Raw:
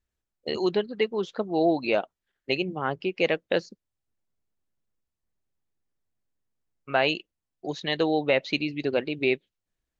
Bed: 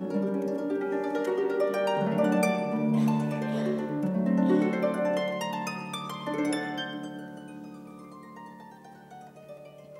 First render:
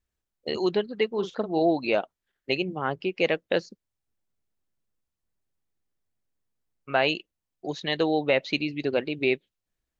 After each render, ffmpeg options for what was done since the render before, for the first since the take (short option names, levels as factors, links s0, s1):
-filter_complex "[0:a]asettb=1/sr,asplit=3[s0][s1][s2];[s0]atrim=end=1.114[s3];[s1]atrim=start=1.11:end=1.62,asetpts=PTS-STARTPTS,afade=t=in:d=0.004:c=qsin,afade=t=out:st=0.506:d=0.004:c=qsin,asplit=2[s4][s5];[s5]adelay=43,volume=0.335[s6];[s4][s6]amix=inputs=2:normalize=0,atrim=end_sample=22491[s7];[s2]atrim=start=1.616[s8];[s3][s7]acrossfade=d=0.004:c1=hsin:c2=qsin[s9];[s9][s8]acrossfade=d=0.004:c1=qsin:c2=hsin"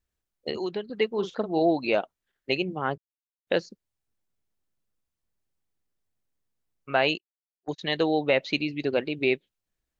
-filter_complex "[0:a]asettb=1/sr,asplit=3[s0][s1][s2];[s0]atrim=end=0.504[s3];[s1]atrim=start=0.5:end=0.9,asetpts=PTS-STARTPTS,afade=t=in:d=0.004:c=qsin,afade=t=out:st=0.396:d=0.004:c=qsin,acrossover=split=510|3000[s4][s5][s6];[s4]acompressor=threshold=0.0282:ratio=4[s7];[s5]acompressor=threshold=0.0126:ratio=4[s8];[s6]acompressor=threshold=0.00447:ratio=4[s9];[s7][s8][s9]amix=inputs=3:normalize=0[s10];[s2]atrim=start=0.896[s11];[s3][s10]acrossfade=d=0.004:c1=hsin:c2=qsin[s12];[s12][s11]acrossfade=d=0.004:c1=qsin:c2=hsin,asplit=3[s13][s14][s15];[s13]afade=t=out:st=7:d=0.02[s16];[s14]agate=range=0.01:threshold=0.0224:ratio=16:release=100:detection=peak,afade=t=in:st=7:d=0.02,afade=t=out:st=7.78:d=0.02[s17];[s15]afade=t=in:st=7.78:d=0.02[s18];[s16][s17][s18]amix=inputs=3:normalize=0,asplit=3[s19][s20][s21];[s19]atrim=end=2.98,asetpts=PTS-STARTPTS,afade=t=out:st=2.976:d=0.004:c=hsin[s22];[s20]atrim=start=2.98:end=3.47,asetpts=PTS-STARTPTS,volume=0[s23];[s21]atrim=start=3.47,asetpts=PTS-STARTPTS,afade=t=in:d=0.004:c=hsin[s24];[s22][s23][s24]concat=n=3:v=0:a=1"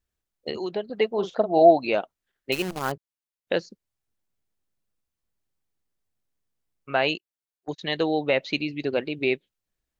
-filter_complex "[0:a]asettb=1/sr,asplit=3[s0][s1][s2];[s0]atrim=end=0.704[s3];[s1]atrim=start=0.7:end=1.83,asetpts=PTS-STARTPTS,afade=t=in:d=0.004:c=qsin,afade=t=out:st=1.126:d=0.004:c=qsin,equalizer=f=670:w=2.5:g=12[s4];[s2]atrim=start=1.826[s5];[s3][s4]acrossfade=d=0.004:c1=hsin:c2=qsin[s6];[s6][s5]acrossfade=d=0.004:c1=qsin:c2=hsin,asettb=1/sr,asplit=3[s7][s8][s9];[s7]atrim=end=2.524[s10];[s8]atrim=start=2.52:end=2.92,asetpts=PTS-STARTPTS,afade=t=in:d=0.004:c=qsin,afade=t=out:st=0.396:d=0.004:c=qsin,acrusher=bits=6:dc=4:mix=0:aa=0.000001[s11];[s9]atrim=start=2.916[s12];[s10][s11]acrossfade=d=0.004:c1=hsin:c2=qsin[s13];[s13][s12]acrossfade=d=0.004:c1=qsin:c2=hsin"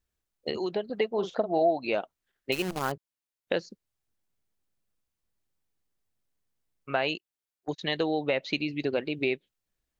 -af "acompressor=threshold=0.0562:ratio=2.5"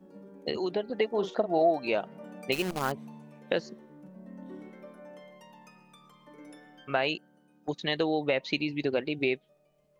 -filter_complex "[1:a]volume=0.0891[s0];[0:a][s0]amix=inputs=2:normalize=0"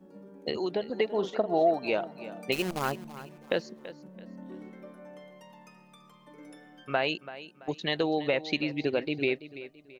-af "aecho=1:1:334|668|1002:0.178|0.0605|0.0206"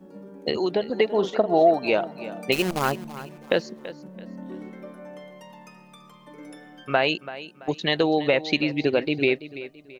-af "volume=2.11"